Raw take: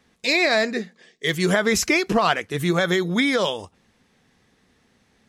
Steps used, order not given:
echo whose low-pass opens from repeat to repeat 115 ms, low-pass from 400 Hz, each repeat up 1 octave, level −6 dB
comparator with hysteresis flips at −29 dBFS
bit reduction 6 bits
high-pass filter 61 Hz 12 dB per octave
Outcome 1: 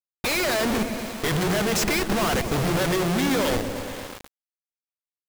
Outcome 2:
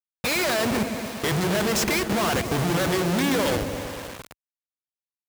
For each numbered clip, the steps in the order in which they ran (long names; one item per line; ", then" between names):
high-pass filter, then comparator with hysteresis, then echo whose low-pass opens from repeat to repeat, then bit reduction
comparator with hysteresis, then echo whose low-pass opens from repeat to repeat, then bit reduction, then high-pass filter